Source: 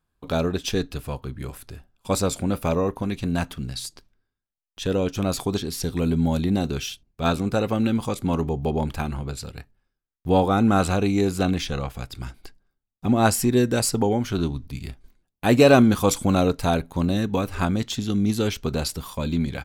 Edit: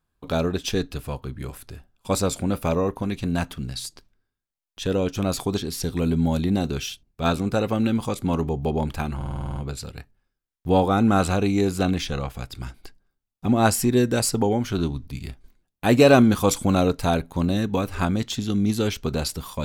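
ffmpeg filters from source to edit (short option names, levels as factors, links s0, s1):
-filter_complex "[0:a]asplit=9[s0][s1][s2][s3][s4][s5][s6][s7][s8];[s0]atrim=end=9.212[s9];[s1]atrim=start=9.158:end=9.212[s10];[s2]atrim=start=9.158:end=9.212[s11];[s3]atrim=start=9.158:end=9.212[s12];[s4]atrim=start=9.158:end=9.212[s13];[s5]atrim=start=9.158:end=9.212[s14];[s6]atrim=start=9.158:end=9.212[s15];[s7]atrim=start=9.158:end=9.212[s16];[s8]atrim=start=9.158[s17];[s9][s10]acrossfade=d=0.004:c1=hsin:c2=hsin[s18];[s18][s11]acrossfade=d=0.004:c1=hsin:c2=hsin[s19];[s19][s12]acrossfade=d=0.004:c1=hsin:c2=hsin[s20];[s20][s13]acrossfade=d=0.004:c1=hsin:c2=hsin[s21];[s21][s14]acrossfade=d=0.004:c1=hsin:c2=hsin[s22];[s22][s15]acrossfade=d=0.004:c1=hsin:c2=hsin[s23];[s23][s16]acrossfade=d=0.004:c1=hsin:c2=hsin[s24];[s24][s17]acrossfade=d=0.004:c1=hsin:c2=hsin"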